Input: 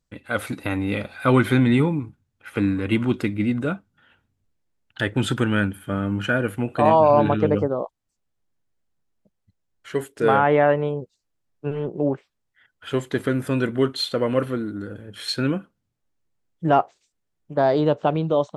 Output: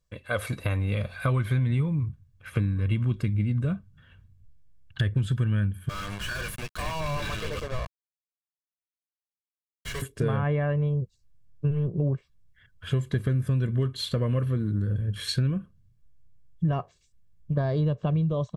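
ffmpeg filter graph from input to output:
-filter_complex "[0:a]asettb=1/sr,asplit=3[a][b][c];[a]atrim=end=5.894[d];[b]atrim=start=5.89:end=10.02,asetpts=PTS-STARTPTS,afade=t=in:d=0.004:c=qsin,afade=t=out:st=4.126:d=0.004:c=qsin,aderivative,acrusher=bits=7:mix=0:aa=0.5,asplit=2[e][f];[f]highpass=f=720:p=1,volume=35dB,asoftclip=type=tanh:threshold=-24dB[g];[e][g]amix=inputs=2:normalize=0,lowpass=f=3.5k:p=1,volume=-6dB[h];[c]atrim=start=10.016[i];[d][h]acrossfade=d=0.004:c1=hsin:c2=qsin[j];[j][i]acrossfade=d=0.004:c1=qsin:c2=hsin,asubboost=boost=9.5:cutoff=180,aecho=1:1:1.8:0.59,acompressor=threshold=-21dB:ratio=6,volume=-2dB"

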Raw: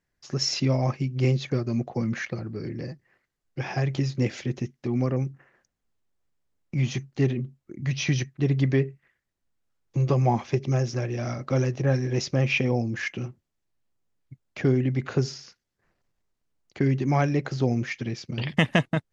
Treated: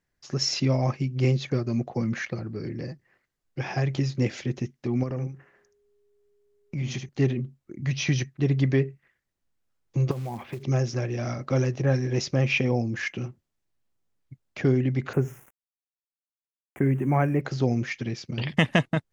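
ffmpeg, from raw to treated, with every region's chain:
-filter_complex "[0:a]asettb=1/sr,asplit=3[a][b][c];[a]atrim=end=5.034[d];[b]atrim=start=5.03:end=7.09,asetpts=PTS-STARTPTS,afade=t=in:d=0.004:c=qsin,afade=t=out:st=2.056:d=0.004:c=qsin,acompressor=threshold=-30dB:ratio=2:attack=3.2:release=140:knee=1:detection=peak,aecho=1:1:76:0.422,atrim=end_sample=90846,aeval=exprs='val(0)+0.000562*sin(2*PI*410*n/s)':c=same[e];[c]atrim=start=7.086[f];[d][e]acrossfade=d=0.004:c1=hsin:c2=qsin[g];[g][f]acrossfade=d=0.004:c1=qsin:c2=hsin,asettb=1/sr,asplit=3[h][i][j];[h]atrim=end=10.114[k];[i]atrim=start=10.11:end=10.63,asetpts=PTS-STARTPTS,afade=t=in:d=0.004:c=qsin,afade=t=out:st=0.516:d=0.004:c=qsin,lowpass=f=3.3k:w=0.5412,lowpass=f=3.3k:w=1.3066,acrusher=bits=5:mode=log:mix=0:aa=0.000001,acompressor=threshold=-29dB:ratio=8:attack=3.2:release=140:knee=1:detection=peak[l];[j]atrim=start=10.626[m];[k][l]acrossfade=d=0.004:c1=hsin:c2=qsin[n];[n][m]acrossfade=d=0.004:c1=qsin:c2=hsin,asettb=1/sr,asplit=3[o][p][q];[o]atrim=end=15.134[r];[p]atrim=start=15.13:end=17.41,asetpts=PTS-STARTPTS,afade=t=in:d=0.004:c=qsin,afade=t=out:st=2.276:d=0.004:c=qsin,bandreject=f=60:t=h:w=6,bandreject=f=120:t=h:w=6,aeval=exprs='val(0)*gte(abs(val(0)),0.00708)':c=same,asuperstop=centerf=4500:order=4:qfactor=0.72[s];[q]atrim=start=17.406[t];[r][s]acrossfade=d=0.004:c1=hsin:c2=qsin[u];[u][t]acrossfade=d=0.004:c1=qsin:c2=hsin"

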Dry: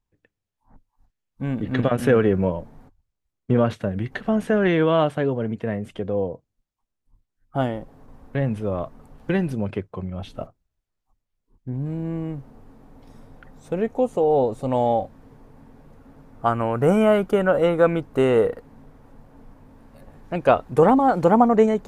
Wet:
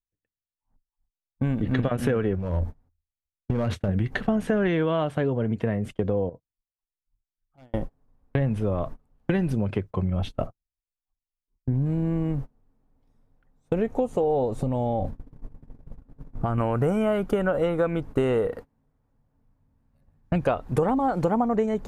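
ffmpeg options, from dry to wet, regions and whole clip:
-filter_complex "[0:a]asettb=1/sr,asplit=3[a][b][c];[a]atrim=end=2.354[d];[b]atrim=start=2.35:end=3.89,asetpts=PTS-STARTPTS,afade=t=in:d=0.004:c=qsin,afade=t=out:st=1.536:d=0.004:c=qsin,equalizer=f=84:t=o:w=0.25:g=11.5,acompressor=threshold=-24dB:ratio=5:attack=3.2:release=140:knee=1:detection=peak,asoftclip=type=hard:threshold=-23dB[e];[c]atrim=start=3.886[f];[d][e]acrossfade=d=0.004:c1=hsin:c2=qsin[g];[g][f]acrossfade=d=0.004:c1=qsin:c2=hsin,asettb=1/sr,asplit=3[h][i][j];[h]atrim=end=6.294[k];[i]atrim=start=6.29:end=7.74,asetpts=PTS-STARTPTS,afade=t=in:d=0.004:c=qsin,afade=t=out:st=1.446:d=0.004:c=qsin,aeval=exprs='0.15*(abs(mod(val(0)/0.15+3,4)-2)-1)':c=same,acompressor=threshold=-46dB:ratio=2.5:attack=3.2:release=140:knee=1:detection=peak[l];[j]atrim=start=7.736[m];[k][l]acrossfade=d=0.004:c1=hsin:c2=qsin[n];[n][m]acrossfade=d=0.004:c1=qsin:c2=hsin,asettb=1/sr,asplit=3[o][p][q];[o]atrim=end=14.624[r];[p]atrim=start=14.62:end=16.58,asetpts=PTS-STARTPTS,afade=t=in:d=0.004:c=qsin,afade=t=out:st=1.956:d=0.004:c=qsin,lowshelf=f=380:g=9,acompressor=threshold=-26dB:ratio=8:attack=3.2:release=140:knee=1:detection=peak[s];[q]atrim=start=16.576[t];[r][s]acrossfade=d=0.004:c1=hsin:c2=qsin[u];[u][t]acrossfade=d=0.004:c1=qsin:c2=hsin,asettb=1/sr,asplit=3[v][w][x];[v]atrim=end=18.474[y];[w]atrim=start=18.47:end=20.44,asetpts=PTS-STARTPTS,afade=t=in:d=0.004:c=qsin,afade=t=out:st=1.966:d=0.004:c=qsin,asubboost=boost=7.5:cutoff=180,highpass=f=120:p=1[z];[x]atrim=start=20.436[aa];[y][z]acrossfade=d=0.004:c1=hsin:c2=qsin[ab];[ab][aa]acrossfade=d=0.004:c1=qsin:c2=hsin,agate=range=-29dB:threshold=-36dB:ratio=16:detection=peak,lowshelf=f=97:g=9.5,acompressor=threshold=-26dB:ratio=6,volume=5dB"

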